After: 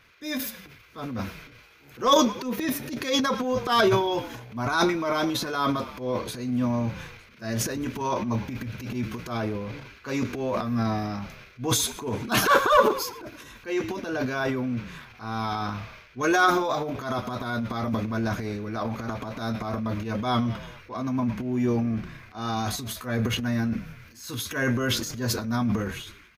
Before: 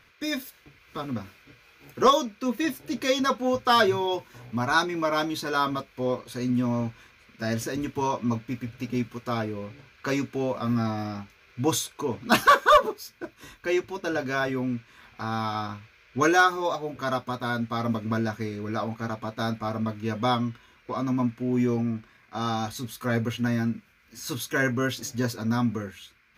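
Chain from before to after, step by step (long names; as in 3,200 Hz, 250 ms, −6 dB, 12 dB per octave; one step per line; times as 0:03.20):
echo with shifted repeats 108 ms, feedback 56%, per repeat −36 Hz, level −23 dB
transient designer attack −9 dB, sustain +10 dB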